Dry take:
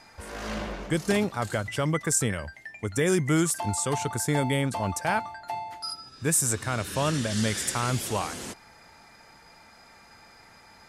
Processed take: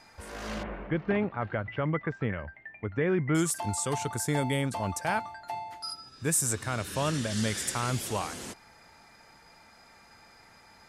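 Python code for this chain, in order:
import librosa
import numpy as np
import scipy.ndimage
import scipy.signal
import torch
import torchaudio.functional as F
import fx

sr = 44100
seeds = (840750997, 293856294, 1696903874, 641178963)

y = fx.cheby2_lowpass(x, sr, hz=9400.0, order=4, stop_db=70, at=(0.63, 3.35))
y = F.gain(torch.from_numpy(y), -3.0).numpy()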